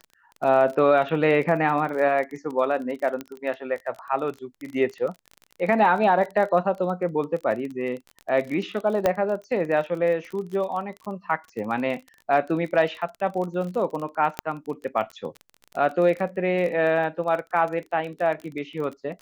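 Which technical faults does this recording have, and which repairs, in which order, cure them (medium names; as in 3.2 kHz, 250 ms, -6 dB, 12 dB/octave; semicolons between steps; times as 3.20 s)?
crackle 28 per s -31 dBFS
3.21 s: pop -18 dBFS
9.06 s: pop -8 dBFS
14.39 s: pop -10 dBFS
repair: de-click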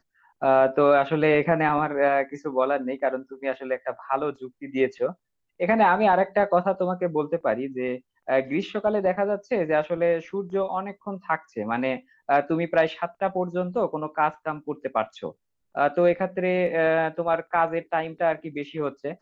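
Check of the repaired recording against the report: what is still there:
nothing left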